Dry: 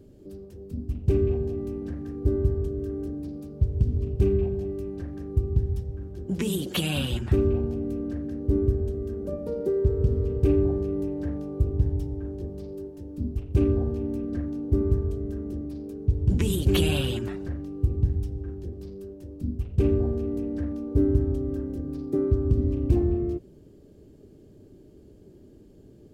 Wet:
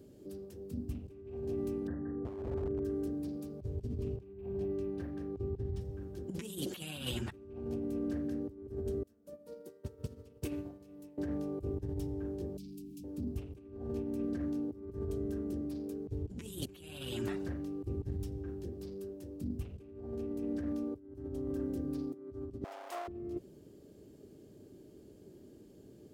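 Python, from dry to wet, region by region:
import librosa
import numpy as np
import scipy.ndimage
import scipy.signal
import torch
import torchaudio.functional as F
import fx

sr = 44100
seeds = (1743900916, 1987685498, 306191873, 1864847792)

y = fx.chain(x, sr, fx.brickwall_lowpass(high_hz=2000.0),
    fx.clip_hard(threshold_db=-23.0), at=(1.87, 2.85))
y = fx.chain(y, sr, fx.air_absorb(metres=53.0),
    fx.resample_linear(factor=3), at=(4.16, 5.81))
y = fx.chain(y, sr, fx.tilt_eq(slope=2.5),
    fx.notch_comb(f0_hz=400.0),
    fx.upward_expand(threshold_db=-41.0, expansion=2.5), at=(9.03, 11.18))
y = fx.chain(y, sr, fx.brickwall_bandstop(low_hz=390.0, high_hz=2200.0),
    fx.fixed_phaser(hz=360.0, stages=6),
    fx.env_flatten(amount_pct=70), at=(12.57, 13.04))
y = fx.chain(y, sr, fx.lower_of_two(delay_ms=0.58),
    fx.highpass(hz=670.0, slope=24),
    fx.quant_float(bits=8), at=(22.64, 23.08))
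y = fx.highpass(y, sr, hz=160.0, slope=6)
y = fx.high_shelf(y, sr, hz=4800.0, db=5.5)
y = fx.over_compress(y, sr, threshold_db=-32.0, ratio=-0.5)
y = y * 10.0 ** (-5.5 / 20.0)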